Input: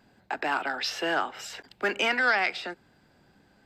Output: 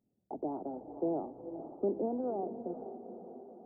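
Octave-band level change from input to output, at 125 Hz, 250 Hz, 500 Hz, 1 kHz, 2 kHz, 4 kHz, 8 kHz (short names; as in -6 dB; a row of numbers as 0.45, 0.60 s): n/a, +2.0 dB, -2.0 dB, -12.5 dB, under -40 dB, under -40 dB, under -35 dB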